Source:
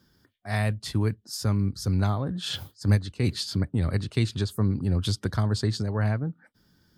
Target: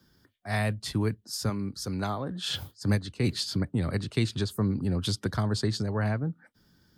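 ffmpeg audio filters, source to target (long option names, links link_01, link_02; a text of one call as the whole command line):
ffmpeg -i in.wav -filter_complex "[0:a]asettb=1/sr,asplit=3[link_01][link_02][link_03];[link_01]atrim=end=1.494[link_04];[link_02]atrim=start=1.49:end=2.49,asetpts=PTS-STARTPTS,afade=type=in:duration=0.004:curve=qsin,afade=type=out:start_time=0.996:duration=0.004:curve=qsin,equalizer=frequency=81:width_type=o:width=2:gain=-12[link_05];[link_03]atrim=start=2.486[link_06];[link_04][link_05]acrossfade=duration=0.004:curve1=hsin:curve2=qsin[link_07];[link_07][link_06]acrossfade=duration=0.004:curve1=qsin:curve2=hsin,acrossover=split=120|530|5300[link_08][link_09][link_10][link_11];[link_08]acompressor=threshold=-36dB:ratio=6[link_12];[link_12][link_09][link_10][link_11]amix=inputs=4:normalize=0" out.wav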